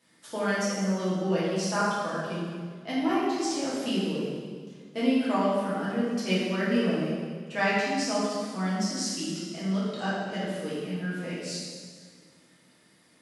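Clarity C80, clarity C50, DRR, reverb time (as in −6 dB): 0.0 dB, −2.0 dB, −9.5 dB, 1.8 s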